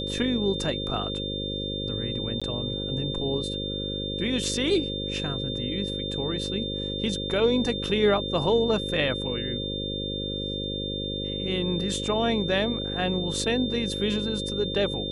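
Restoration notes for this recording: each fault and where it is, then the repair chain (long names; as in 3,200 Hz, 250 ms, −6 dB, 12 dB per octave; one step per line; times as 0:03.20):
mains buzz 50 Hz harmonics 11 −33 dBFS
whistle 3,600 Hz −32 dBFS
0:02.40–0:02.42: drop-out 16 ms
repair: hum removal 50 Hz, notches 11
notch filter 3,600 Hz, Q 30
repair the gap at 0:02.40, 16 ms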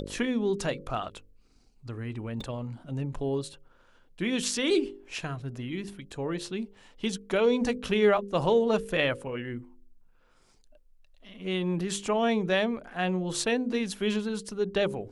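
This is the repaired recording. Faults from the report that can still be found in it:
none of them is left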